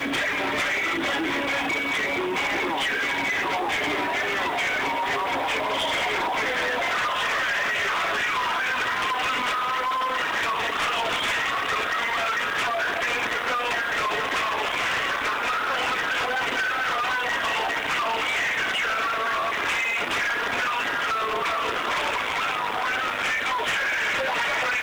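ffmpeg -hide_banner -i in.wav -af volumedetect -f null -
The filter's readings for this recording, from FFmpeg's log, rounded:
mean_volume: -25.2 dB
max_volume: -20.4 dB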